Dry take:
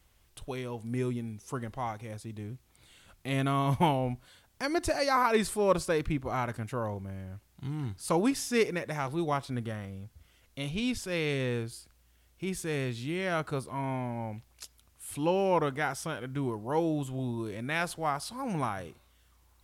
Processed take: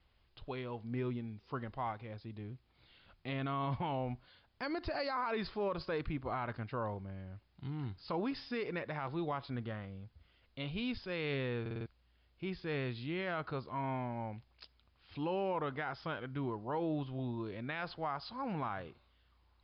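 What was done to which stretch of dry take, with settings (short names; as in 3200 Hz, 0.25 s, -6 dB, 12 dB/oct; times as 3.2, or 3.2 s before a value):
11.61 stutter in place 0.05 s, 5 plays
whole clip: dynamic EQ 1200 Hz, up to +3 dB, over -45 dBFS, Q 1.1; limiter -23 dBFS; Chebyshev low-pass 5000 Hz, order 8; gain -4.5 dB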